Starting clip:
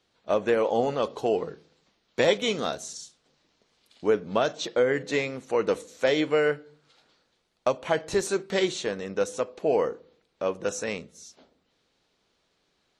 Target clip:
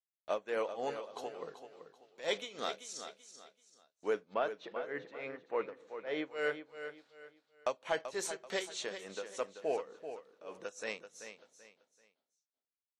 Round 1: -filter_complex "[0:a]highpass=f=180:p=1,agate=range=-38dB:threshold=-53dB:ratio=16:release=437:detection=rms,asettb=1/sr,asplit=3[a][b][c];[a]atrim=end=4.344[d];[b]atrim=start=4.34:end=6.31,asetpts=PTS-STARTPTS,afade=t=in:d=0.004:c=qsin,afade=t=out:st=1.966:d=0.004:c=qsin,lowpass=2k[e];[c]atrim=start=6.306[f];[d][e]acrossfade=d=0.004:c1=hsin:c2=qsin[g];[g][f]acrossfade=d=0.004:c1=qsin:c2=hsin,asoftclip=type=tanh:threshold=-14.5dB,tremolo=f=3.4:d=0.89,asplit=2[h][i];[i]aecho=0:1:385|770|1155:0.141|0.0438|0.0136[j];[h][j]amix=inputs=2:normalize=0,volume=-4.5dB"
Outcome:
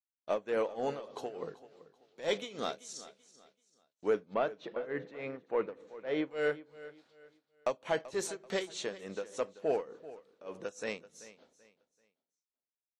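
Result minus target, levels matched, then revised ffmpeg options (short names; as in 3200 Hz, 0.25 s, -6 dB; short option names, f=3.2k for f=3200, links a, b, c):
echo-to-direct -7 dB; 250 Hz band +3.0 dB
-filter_complex "[0:a]highpass=f=680:p=1,agate=range=-38dB:threshold=-53dB:ratio=16:release=437:detection=rms,asettb=1/sr,asplit=3[a][b][c];[a]atrim=end=4.344[d];[b]atrim=start=4.34:end=6.31,asetpts=PTS-STARTPTS,afade=t=in:d=0.004:c=qsin,afade=t=out:st=1.966:d=0.004:c=qsin,lowpass=2k[e];[c]atrim=start=6.306[f];[d][e]acrossfade=d=0.004:c1=hsin:c2=qsin[g];[g][f]acrossfade=d=0.004:c1=qsin:c2=hsin,asoftclip=type=tanh:threshold=-14.5dB,tremolo=f=3.4:d=0.89,asplit=2[h][i];[i]aecho=0:1:385|770|1155:0.316|0.098|0.0304[j];[h][j]amix=inputs=2:normalize=0,volume=-4.5dB"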